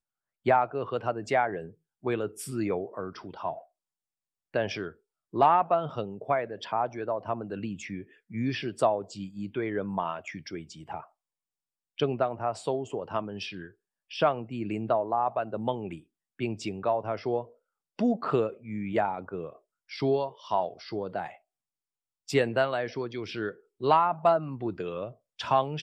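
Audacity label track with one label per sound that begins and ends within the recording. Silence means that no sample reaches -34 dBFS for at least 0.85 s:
4.550000	11.000000	sound
11.990000	21.270000	sound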